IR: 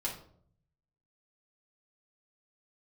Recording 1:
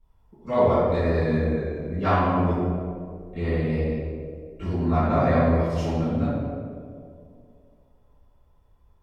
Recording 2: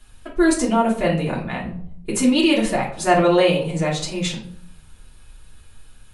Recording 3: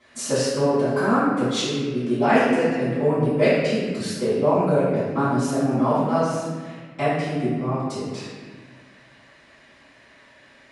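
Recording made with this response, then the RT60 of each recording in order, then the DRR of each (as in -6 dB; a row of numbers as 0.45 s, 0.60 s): 2; 2.3 s, 0.60 s, 1.5 s; -18.5 dB, -5.0 dB, -16.5 dB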